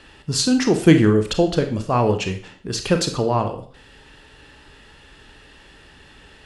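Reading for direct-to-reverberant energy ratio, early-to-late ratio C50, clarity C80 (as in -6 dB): 6.0 dB, 9.5 dB, 14.0 dB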